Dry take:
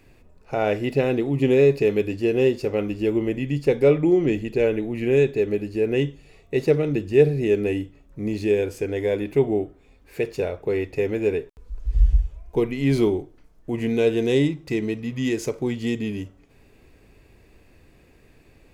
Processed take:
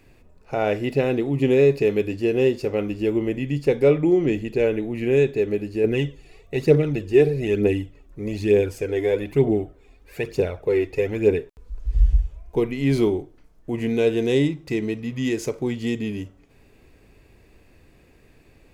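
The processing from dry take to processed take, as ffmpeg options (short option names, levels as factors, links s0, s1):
-filter_complex "[0:a]asettb=1/sr,asplit=3[s0][s1][s2];[s0]atrim=end=5.844[s3];[s1]atrim=start=5.84:end=11.39,asetpts=PTS-STARTPTS,afade=t=in:d=0.004:c=qsin,afade=t=out:st=5.546:d=0.004:c=qsin,aphaser=in_gain=1:out_gain=1:delay=3:decay=0.5:speed=1.1:type=triangular[s4];[s2]atrim=start=11.386[s5];[s3][s4]acrossfade=d=0.004:c1=hsin:c2=qsin[s6];[s6][s5]acrossfade=d=0.004:c1=qsin:c2=hsin"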